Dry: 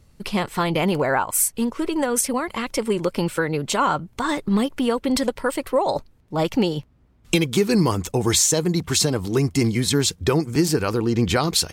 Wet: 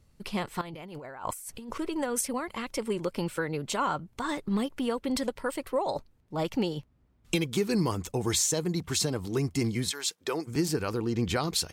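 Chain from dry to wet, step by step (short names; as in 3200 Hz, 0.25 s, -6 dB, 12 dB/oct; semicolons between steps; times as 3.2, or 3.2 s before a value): 0.61–1.78 negative-ratio compressor -32 dBFS, ratio -1; 9.89–10.46 HPF 1100 Hz -> 280 Hz 12 dB/oct; gain -8.5 dB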